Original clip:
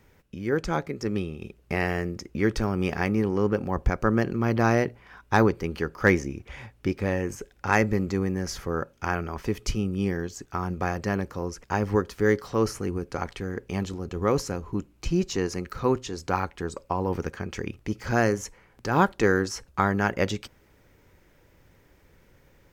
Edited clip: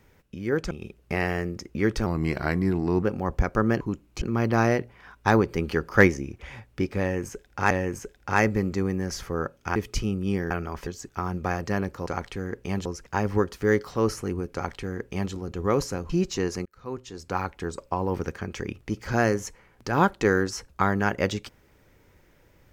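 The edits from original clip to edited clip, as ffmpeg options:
-filter_complex "[0:a]asplit=16[a][b][c][d][e][f][g][h][i][j][k][l][m][n][o][p];[a]atrim=end=0.712[q];[b]atrim=start=1.308:end=2.664[r];[c]atrim=start=2.66:end=3.5,asetpts=PTS-STARTPTS,asetrate=38367,aresample=44100,atrim=end_sample=42579,asetpts=PTS-STARTPTS[s];[d]atrim=start=3.496:end=4.282[t];[e]atrim=start=14.668:end=15.082[u];[f]atrim=start=4.278:end=5.552[v];[g]atrim=start=5.548:end=6.142,asetpts=PTS-STARTPTS,volume=3dB[w];[h]atrim=start=6.138:end=7.772[x];[i]atrim=start=7.068:end=9.122[y];[j]atrim=start=9.478:end=10.232[z];[k]atrim=start=9.118:end=9.482[aa];[l]atrim=start=10.228:end=11.432[ab];[m]atrim=start=13.108:end=13.902[ac];[n]atrim=start=11.428:end=14.672[ad];[o]atrim=start=15.078:end=15.64,asetpts=PTS-STARTPTS,afade=t=out:st=0.558:d=0.004:c=hsin[ae];[p]atrim=start=15.64,asetpts=PTS-STARTPTS,afade=t=in:d=0.92[af];[q][r]acrossfade=d=0.004:c1=hsin:c2=hsin[ag];[ag][s]acrossfade=d=0.004:c1=hsin:c2=hsin[ah];[ah][t]acrossfade=d=0.004:c1=hsin:c2=hsin[ai];[ai][u]acrossfade=d=0.004:c1=hsin:c2=hsin[aj];[aj][v]acrossfade=d=0.004:c1=hsin:c2=hsin[ak];[ak][w]acrossfade=d=0.004:c1=hsin:c2=hsin[al];[al][x]acrossfade=d=0.004:c1=hsin:c2=hsin[am];[am][y]acrossfade=d=0.004:c1=hsin:c2=hsin[an];[an][z]acrossfade=d=0.004:c1=hsin:c2=hsin[ao];[ao][aa]acrossfade=d=0.004:c1=hsin:c2=hsin[ap];[ap][ab]acrossfade=d=0.004:c1=hsin:c2=hsin[aq];[aq][ac]acrossfade=d=0.004:c1=hsin:c2=hsin[ar];[ar][ad]acrossfade=d=0.004:c1=hsin:c2=hsin[as];[ae][af]concat=n=2:v=0:a=1[at];[as][at]acrossfade=d=0.004:c1=hsin:c2=hsin"

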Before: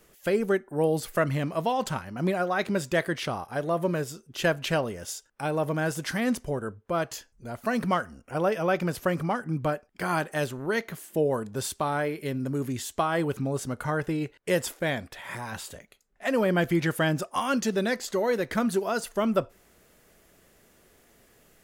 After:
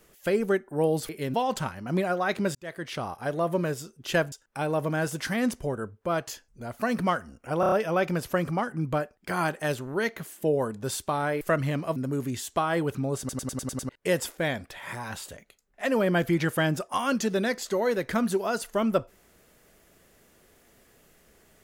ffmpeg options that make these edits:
-filter_complex "[0:a]asplit=18[a][b][c][d][e][f][g][h][i][j][k][l][m][n][o][p][q][r];[a]atrim=end=1.092[s];[b]atrim=start=12.128:end=12.382[t];[c]atrim=start=1.638:end=2.85,asetpts=PTS-STARTPTS,afade=t=out:st=1.208:d=0.004:c=hsin[u];[d]atrim=start=2.85:end=4.622,asetpts=PTS-STARTPTS,afade=t=in:d=0.57[v];[e]atrim=start=5.158:end=8.472[w];[f]atrim=start=8.438:end=8.472[x];[g]atrim=start=8.438:end=8.472[y];[h]atrim=start=8.438:end=8.472[z];[i]atrim=start=8.438:end=12.132[aa];[j]atrim=start=1.088:end=1.642[ab];[k]atrim=start=12.378:end=13.712[ac];[l]atrim=start=13.608:end=13.712[ad];[m]atrim=start=13.608:end=13.712[ae];[n]atrim=start=13.608:end=13.712[af];[o]atrim=start=13.608:end=13.712[ag];[p]atrim=start=13.608:end=13.712[ah];[q]atrim=start=13.608:end=13.712[ai];[r]atrim=start=14.308[aj];[s][t]acrossfade=d=0.004:c1=hsin:c2=hsin[ak];[u][v]concat=n=2:v=0:a=1[al];[ak][al]acrossfade=d=0.004:c1=hsin:c2=hsin[am];[am][w]acrossfade=d=0.004:c1=hsin:c2=hsin[an];[an][x]acrossfade=d=0.004:c1=hsin:c2=hsin[ao];[ao][y]acrossfade=d=0.004:c1=hsin:c2=hsin[ap];[ap][z]acrossfade=d=0.004:c1=hsin:c2=hsin[aq];[aq][aa]acrossfade=d=0.004:c1=hsin:c2=hsin[ar];[ar][ab]acrossfade=d=0.004:c1=hsin:c2=hsin[as];[as][ac]acrossfade=d=0.004:c1=hsin:c2=hsin[at];[at][ad]acrossfade=d=0.004:c1=hsin:c2=hsin[au];[au][ae]acrossfade=d=0.004:c1=hsin:c2=hsin[av];[av][af]acrossfade=d=0.004:c1=hsin:c2=hsin[aw];[aw][ag]acrossfade=d=0.004:c1=hsin:c2=hsin[ax];[ax][ah]acrossfade=d=0.004:c1=hsin:c2=hsin[ay];[ay][ai]acrossfade=d=0.004:c1=hsin:c2=hsin[az];[az][aj]acrossfade=d=0.004:c1=hsin:c2=hsin"

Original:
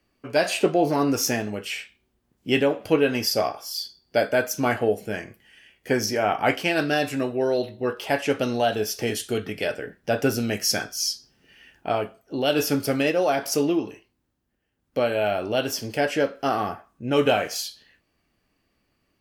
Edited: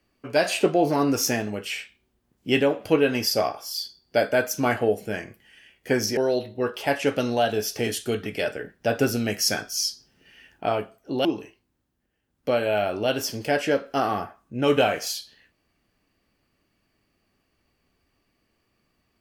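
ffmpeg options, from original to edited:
-filter_complex "[0:a]asplit=3[a][b][c];[a]atrim=end=6.172[d];[b]atrim=start=7.398:end=12.482[e];[c]atrim=start=13.738[f];[d][e]acrossfade=d=0.004:c1=hsin:c2=hsin[g];[g][f]acrossfade=d=0.004:c1=hsin:c2=hsin"

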